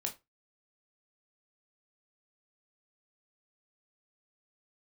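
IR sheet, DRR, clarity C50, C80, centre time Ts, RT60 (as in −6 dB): 2.0 dB, 14.5 dB, 22.5 dB, 12 ms, 0.20 s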